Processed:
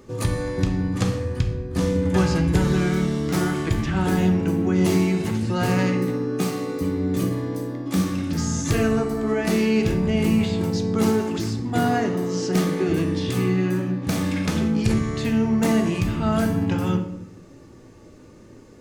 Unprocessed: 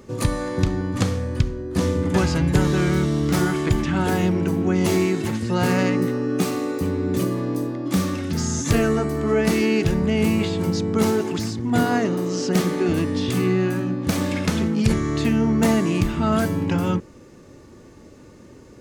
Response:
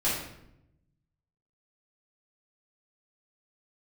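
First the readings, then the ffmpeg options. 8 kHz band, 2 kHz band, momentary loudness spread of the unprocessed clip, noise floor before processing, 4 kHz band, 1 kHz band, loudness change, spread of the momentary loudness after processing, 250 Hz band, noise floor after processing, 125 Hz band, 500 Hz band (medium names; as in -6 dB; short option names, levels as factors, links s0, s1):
-2.0 dB, -2.0 dB, 5 LU, -46 dBFS, -2.0 dB, -1.5 dB, -1.0 dB, 5 LU, -0.5 dB, -46 dBFS, -0.5 dB, -1.5 dB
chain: -filter_complex "[0:a]asplit=2[s0][s1];[1:a]atrim=start_sample=2205[s2];[s1][s2]afir=irnorm=-1:irlink=0,volume=0.224[s3];[s0][s3]amix=inputs=2:normalize=0,volume=0.596"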